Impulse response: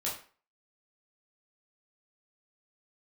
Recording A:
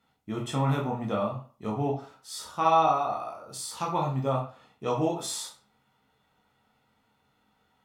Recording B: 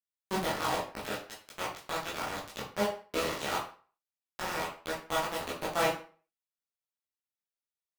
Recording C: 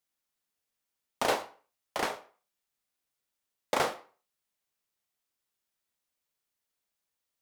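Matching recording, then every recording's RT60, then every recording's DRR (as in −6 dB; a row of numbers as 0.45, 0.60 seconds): B; 0.40, 0.40, 0.40 seconds; −2.0, −6.0, 7.0 decibels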